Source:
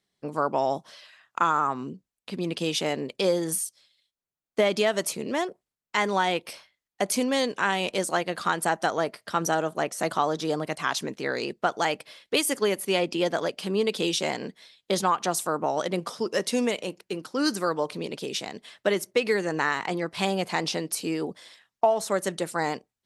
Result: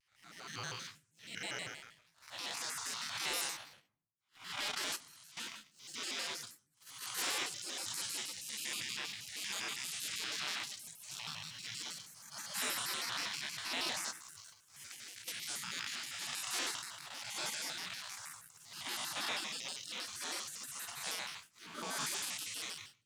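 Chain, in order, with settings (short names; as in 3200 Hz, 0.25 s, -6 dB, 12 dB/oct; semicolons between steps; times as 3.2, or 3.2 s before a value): time blur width 0.304 s; HPF 310 Hz 12 dB/oct; spectral gate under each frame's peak -25 dB weak; high shelf 9700 Hz -9 dB; 14.1–15.28 compressor 6:1, threshold -57 dBFS, peak gain reduction 11.5 dB; sample leveller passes 2; 4.68–5.37 level quantiser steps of 20 dB; reverb RT60 0.45 s, pre-delay 6 ms, DRR 12.5 dB; shaped vibrato square 6.3 Hz, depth 250 cents; gain +1.5 dB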